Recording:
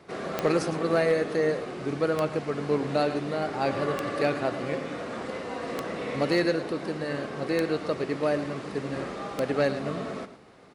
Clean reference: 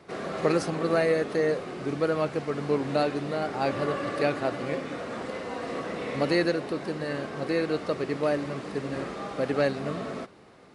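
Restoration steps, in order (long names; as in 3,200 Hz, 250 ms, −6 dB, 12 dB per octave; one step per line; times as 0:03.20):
clipped peaks rebuilt −14.5 dBFS
click removal
echo removal 109 ms −13 dB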